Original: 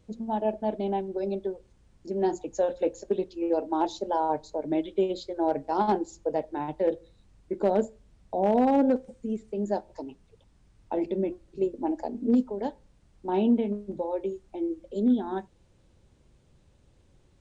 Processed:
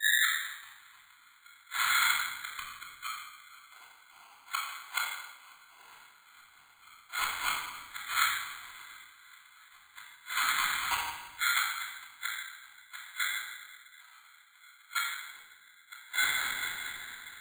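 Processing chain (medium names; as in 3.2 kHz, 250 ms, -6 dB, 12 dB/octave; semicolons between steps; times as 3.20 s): tape start-up on the opening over 0.45 s; peaking EQ 680 Hz -4.5 dB 0.44 oct; delay with an opening low-pass 217 ms, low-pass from 200 Hz, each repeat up 1 oct, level -3 dB; whisper effect; inverted gate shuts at -24 dBFS, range -30 dB; ring modulator 1.8 kHz; treble shelf 4 kHz -11 dB; simulated room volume 1600 m³, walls mixed, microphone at 3.2 m; careless resampling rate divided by 8×, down filtered, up hold; three bands expanded up and down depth 40%; trim +6 dB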